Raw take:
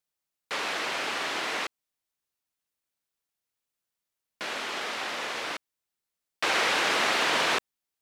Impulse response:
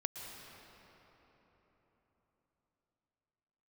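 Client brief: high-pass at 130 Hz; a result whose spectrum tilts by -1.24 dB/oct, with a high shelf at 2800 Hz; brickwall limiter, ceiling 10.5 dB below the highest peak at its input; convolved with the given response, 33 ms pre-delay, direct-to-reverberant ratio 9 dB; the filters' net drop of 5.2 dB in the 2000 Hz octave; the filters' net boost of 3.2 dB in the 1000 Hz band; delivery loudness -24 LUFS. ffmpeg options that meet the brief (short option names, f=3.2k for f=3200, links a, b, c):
-filter_complex "[0:a]highpass=130,equalizer=f=1k:t=o:g=6.5,equalizer=f=2k:t=o:g=-7.5,highshelf=f=2.8k:g=-3.5,alimiter=limit=-23dB:level=0:latency=1,asplit=2[a][b];[1:a]atrim=start_sample=2205,adelay=33[c];[b][c]afir=irnorm=-1:irlink=0,volume=-9.5dB[d];[a][d]amix=inputs=2:normalize=0,volume=8.5dB"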